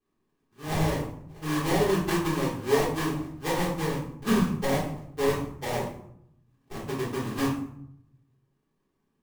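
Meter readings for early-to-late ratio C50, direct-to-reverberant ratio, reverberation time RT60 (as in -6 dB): 5.0 dB, -7.0 dB, 0.70 s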